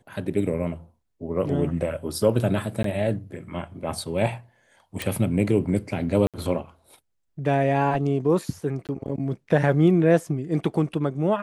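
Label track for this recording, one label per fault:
2.830000	2.840000	dropout 13 ms
5.020000	5.020000	pop
6.270000	6.340000	dropout 67 ms
8.870000	8.890000	dropout 18 ms

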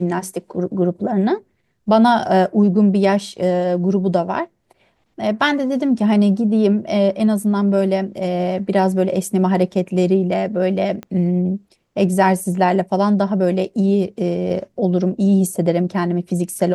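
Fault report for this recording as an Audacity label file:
11.030000	11.030000	pop -18 dBFS

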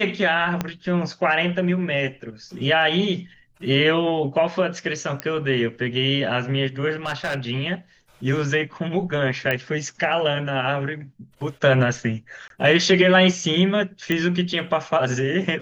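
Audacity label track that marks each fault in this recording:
0.610000	0.610000	pop -9 dBFS
5.200000	5.200000	pop -10 dBFS
7.060000	7.380000	clipped -21 dBFS
9.510000	9.510000	pop -10 dBFS
12.480000	12.500000	dropout 22 ms
14.120000	14.120000	pop -10 dBFS

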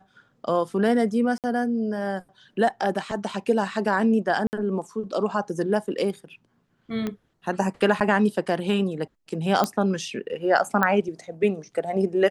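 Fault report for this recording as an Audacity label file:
1.380000	1.440000	dropout 58 ms
4.470000	4.530000	dropout 59 ms
7.070000	7.070000	pop -16 dBFS
8.000000	8.010000	dropout 7.6 ms
9.640000	9.640000	pop -9 dBFS
10.830000	10.830000	pop -9 dBFS

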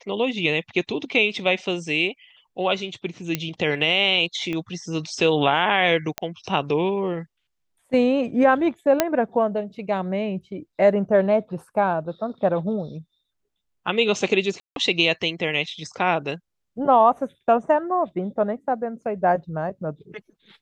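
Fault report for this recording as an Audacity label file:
3.350000	3.350000	pop -8 dBFS
4.530000	4.530000	pop -17 dBFS
6.180000	6.180000	pop -9 dBFS
9.000000	9.000000	pop -2 dBFS
14.600000	14.760000	dropout 162 ms

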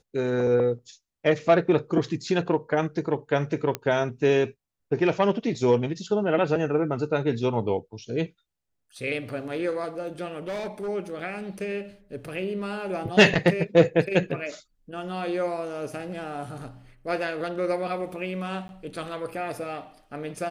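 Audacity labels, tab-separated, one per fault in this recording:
3.750000	3.750000	pop -12 dBFS
10.480000	10.890000	clipped -28 dBFS
18.680000	18.690000	dropout

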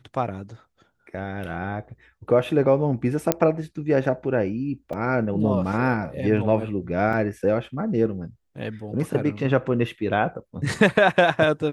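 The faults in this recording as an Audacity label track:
3.320000	3.320000	pop -3 dBFS
4.930000	4.930000	dropout 4.5 ms
7.130000	7.130000	dropout 2.9 ms

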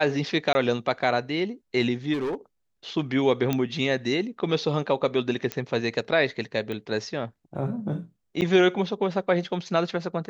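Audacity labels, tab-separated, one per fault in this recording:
0.530000	0.550000	dropout 20 ms
2.130000	2.350000	clipped -24.5 dBFS
3.530000	3.530000	pop -11 dBFS
5.520000	5.520000	pop -13 dBFS
6.720000	6.720000	pop -21 dBFS
8.410000	8.420000	dropout 8.3 ms

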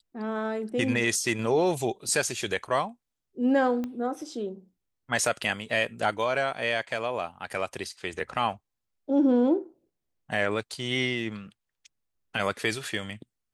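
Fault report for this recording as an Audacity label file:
3.840000	3.840000	pop -21 dBFS

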